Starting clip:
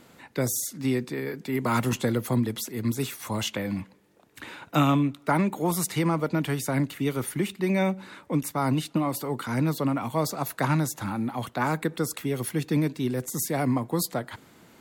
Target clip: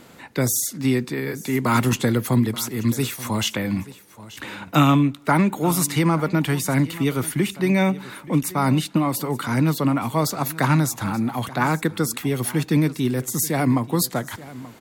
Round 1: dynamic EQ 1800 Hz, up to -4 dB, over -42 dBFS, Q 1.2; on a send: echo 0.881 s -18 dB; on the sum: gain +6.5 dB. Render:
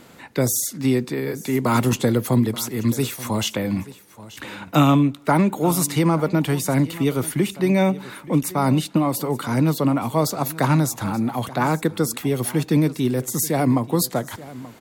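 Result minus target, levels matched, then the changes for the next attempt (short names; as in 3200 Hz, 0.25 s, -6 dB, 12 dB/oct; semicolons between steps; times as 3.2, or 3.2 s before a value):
2000 Hz band -3.5 dB
change: dynamic EQ 540 Hz, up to -4 dB, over -42 dBFS, Q 1.2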